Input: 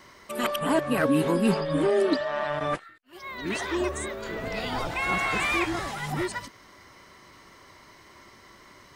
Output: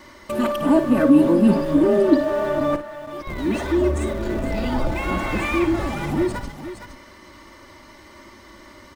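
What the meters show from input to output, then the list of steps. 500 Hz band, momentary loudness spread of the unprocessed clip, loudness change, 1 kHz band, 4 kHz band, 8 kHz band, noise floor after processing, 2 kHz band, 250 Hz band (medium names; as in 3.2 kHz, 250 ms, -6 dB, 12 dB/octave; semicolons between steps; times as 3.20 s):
+6.5 dB, 11 LU, +7.0 dB, +2.0 dB, -2.0 dB, -2.0 dB, -46 dBFS, -1.0 dB, +10.5 dB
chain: bass shelf 320 Hz +4 dB; comb 3.4 ms, depth 63%; in parallel at -10 dB: Schmitt trigger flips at -30.5 dBFS; on the sum: tilt shelf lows +6 dB; on a send: multi-tap echo 55/464 ms -11/-13.5 dB; on the sum: tape noise reduction on one side only encoder only; trim -1.5 dB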